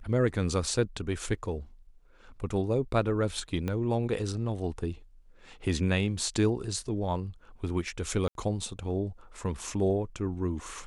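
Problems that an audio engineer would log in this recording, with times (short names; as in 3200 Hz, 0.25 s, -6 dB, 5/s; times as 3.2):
3.68 pop -19 dBFS
8.28–8.35 gap 72 ms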